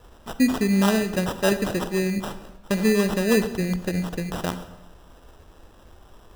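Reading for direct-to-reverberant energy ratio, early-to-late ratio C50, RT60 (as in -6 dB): 11.0 dB, 12.0 dB, 1.0 s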